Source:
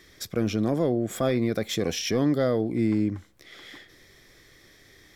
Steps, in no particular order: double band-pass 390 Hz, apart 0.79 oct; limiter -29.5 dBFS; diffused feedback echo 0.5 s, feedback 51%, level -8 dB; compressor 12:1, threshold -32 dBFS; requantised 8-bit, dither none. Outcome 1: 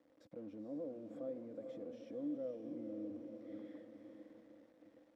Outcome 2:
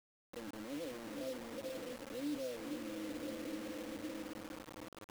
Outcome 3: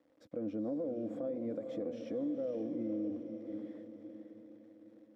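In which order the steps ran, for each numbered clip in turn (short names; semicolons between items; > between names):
compressor > diffused feedback echo > limiter > requantised > double band-pass; diffused feedback echo > limiter > compressor > double band-pass > requantised; requantised > double band-pass > compressor > diffused feedback echo > limiter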